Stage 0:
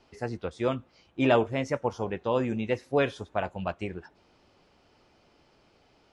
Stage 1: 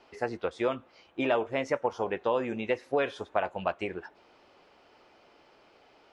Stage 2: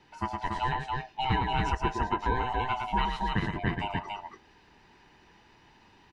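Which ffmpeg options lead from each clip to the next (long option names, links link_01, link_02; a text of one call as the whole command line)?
ffmpeg -i in.wav -af "acompressor=threshold=-28dB:ratio=4,bass=frequency=250:gain=-14,treble=frequency=4000:gain=-8,volume=5.5dB" out.wav
ffmpeg -i in.wav -filter_complex "[0:a]afftfilt=real='real(if(lt(b,1008),b+24*(1-2*mod(floor(b/24),2)),b),0)':imag='imag(if(lt(b,1008),b+24*(1-2*mod(floor(b/24),2)),b),0)':win_size=2048:overlap=0.75,asplit=2[link_01][link_02];[link_02]aecho=0:1:110.8|282.8:0.562|0.708[link_03];[link_01][link_03]amix=inputs=2:normalize=0,volume=-1dB" out.wav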